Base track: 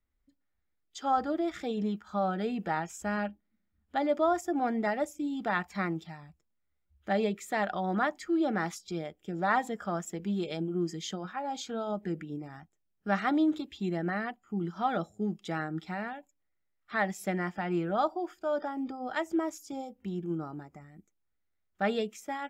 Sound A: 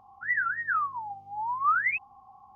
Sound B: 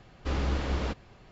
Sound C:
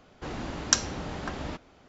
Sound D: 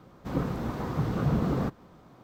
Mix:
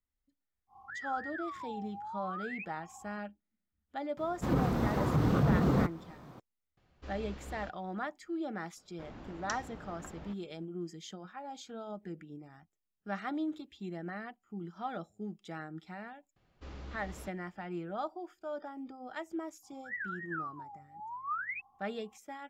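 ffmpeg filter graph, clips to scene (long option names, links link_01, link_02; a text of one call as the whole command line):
ffmpeg -i bed.wav -i cue0.wav -i cue1.wav -i cue2.wav -i cue3.wav -filter_complex "[1:a]asplit=2[link_01][link_02];[2:a]asplit=2[link_03][link_04];[0:a]volume=-9dB[link_05];[link_01]acompressor=threshold=-39dB:ratio=6:attack=3.2:release=140:knee=1:detection=peak[link_06];[4:a]alimiter=level_in=19.5dB:limit=-1dB:release=50:level=0:latency=1[link_07];[3:a]lowpass=frequency=2200:poles=1[link_08];[link_06]atrim=end=2.55,asetpts=PTS-STARTPTS,volume=-2dB,afade=type=in:duration=0.1,afade=type=out:start_time=2.45:duration=0.1,adelay=670[link_09];[link_07]atrim=end=2.23,asetpts=PTS-STARTPTS,volume=-17.5dB,afade=type=in:duration=0.004:curve=hsin,afade=type=out:start_time=2.226:duration=0.004:curve=hsin,adelay=183897S[link_10];[link_03]atrim=end=1.31,asetpts=PTS-STARTPTS,volume=-16dB,afade=type=in:duration=0.004:curve=hsin,afade=type=out:start_time=1.306:duration=0.004:curve=hsin,adelay=6770[link_11];[link_08]atrim=end=1.88,asetpts=PTS-STARTPTS,volume=-12.5dB,afade=type=in:duration=0.004:curve=hsin,afade=type=out:start_time=1.876:duration=0.004:curve=hsin,adelay=8770[link_12];[link_04]atrim=end=1.31,asetpts=PTS-STARTPTS,volume=-17dB,afade=type=in:duration=0.004:curve=hsin,afade=type=out:start_time=1.306:duration=0.004:curve=hsin,adelay=721476S[link_13];[link_02]atrim=end=2.55,asetpts=PTS-STARTPTS,volume=-12dB,afade=type=in:duration=0.004:curve=hsin,afade=type=out:start_time=2.546:duration=0.004:curve=hsin,adelay=19630[link_14];[link_05][link_09][link_10][link_11][link_12][link_13][link_14]amix=inputs=7:normalize=0" out.wav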